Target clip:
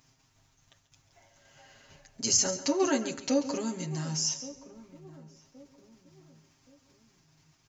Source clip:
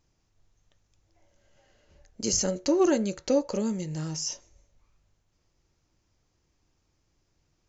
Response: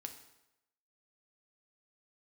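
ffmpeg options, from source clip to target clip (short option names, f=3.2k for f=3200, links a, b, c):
-filter_complex "[0:a]agate=range=-33dB:threshold=-59dB:ratio=3:detection=peak,aecho=1:1:7.5:0.87,acompressor=mode=upward:threshold=-39dB:ratio=2.5,highpass=f=180:p=1,equalizer=f=420:t=o:w=1.1:g=-7.5,bandreject=f=530:w=12,asplit=2[a][b];[b]adelay=1123,lowpass=f=1k:p=1,volume=-17dB,asplit=2[c][d];[d]adelay=1123,lowpass=f=1k:p=1,volume=0.41,asplit=2[e][f];[f]adelay=1123,lowpass=f=1k:p=1,volume=0.41[g];[a][c][e][g]amix=inputs=4:normalize=0,asplit=2[h][i];[1:a]atrim=start_sample=2205,adelay=138[j];[i][j]afir=irnorm=-1:irlink=0,volume=-9.5dB[k];[h][k]amix=inputs=2:normalize=0"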